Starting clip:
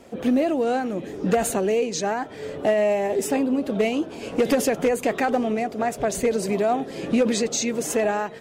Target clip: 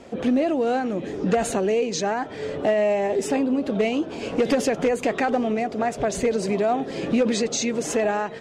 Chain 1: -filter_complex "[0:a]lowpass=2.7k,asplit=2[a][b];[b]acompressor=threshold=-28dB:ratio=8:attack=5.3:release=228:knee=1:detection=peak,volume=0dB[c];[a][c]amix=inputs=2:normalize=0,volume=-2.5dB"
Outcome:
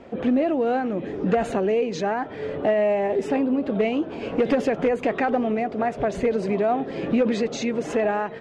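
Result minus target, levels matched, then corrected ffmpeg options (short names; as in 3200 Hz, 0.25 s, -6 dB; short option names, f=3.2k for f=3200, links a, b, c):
8000 Hz band -12.5 dB
-filter_complex "[0:a]lowpass=6.9k,asplit=2[a][b];[b]acompressor=threshold=-28dB:ratio=8:attack=5.3:release=228:knee=1:detection=peak,volume=0dB[c];[a][c]amix=inputs=2:normalize=0,volume=-2.5dB"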